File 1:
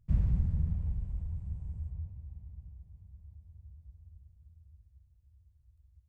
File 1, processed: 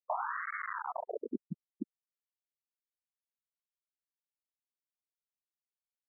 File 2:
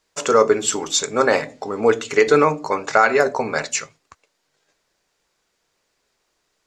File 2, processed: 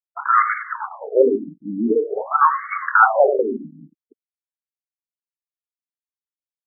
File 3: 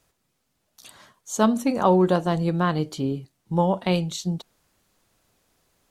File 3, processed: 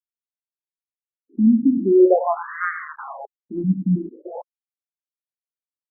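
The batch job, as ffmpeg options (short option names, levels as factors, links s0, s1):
-af "aeval=exprs='0.447*(abs(mod(val(0)/0.447+3,4)-2)-1)':c=same,aecho=1:1:95|190|285:0.316|0.0854|0.0231,acrusher=bits=4:mix=0:aa=0.000001,afftfilt=real='re*between(b*sr/1024,220*pow(1600/220,0.5+0.5*sin(2*PI*0.46*pts/sr))/1.41,220*pow(1600/220,0.5+0.5*sin(2*PI*0.46*pts/sr))*1.41)':imag='im*between(b*sr/1024,220*pow(1600/220,0.5+0.5*sin(2*PI*0.46*pts/sr))/1.41,220*pow(1600/220,0.5+0.5*sin(2*PI*0.46*pts/sr))*1.41)':win_size=1024:overlap=0.75,volume=2.24"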